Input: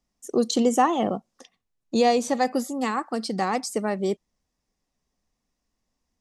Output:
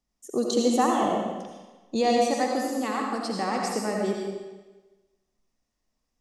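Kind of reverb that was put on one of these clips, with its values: digital reverb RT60 1.2 s, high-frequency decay 0.95×, pre-delay 40 ms, DRR -1 dB; gain -4.5 dB

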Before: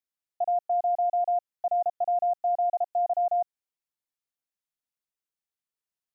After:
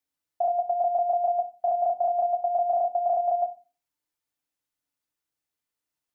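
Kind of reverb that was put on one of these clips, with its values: FDN reverb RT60 0.31 s, low-frequency decay 1.55×, high-frequency decay 0.5×, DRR 2.5 dB; gain +3.5 dB

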